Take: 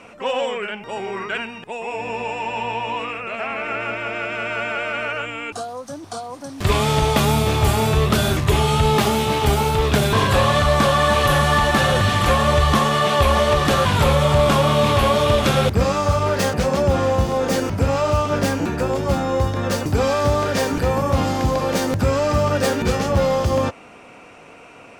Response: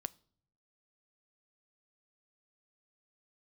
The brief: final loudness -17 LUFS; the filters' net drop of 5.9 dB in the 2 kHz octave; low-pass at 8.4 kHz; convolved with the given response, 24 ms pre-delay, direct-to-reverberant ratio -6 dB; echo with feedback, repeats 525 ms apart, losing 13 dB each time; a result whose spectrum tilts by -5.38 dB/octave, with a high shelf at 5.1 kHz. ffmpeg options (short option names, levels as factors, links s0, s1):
-filter_complex "[0:a]lowpass=8400,equalizer=f=2000:t=o:g=-8.5,highshelf=f=5100:g=3.5,aecho=1:1:525|1050|1575:0.224|0.0493|0.0108,asplit=2[s0][s1];[1:a]atrim=start_sample=2205,adelay=24[s2];[s1][s2]afir=irnorm=-1:irlink=0,volume=2.66[s3];[s0][s3]amix=inputs=2:normalize=0,volume=0.631"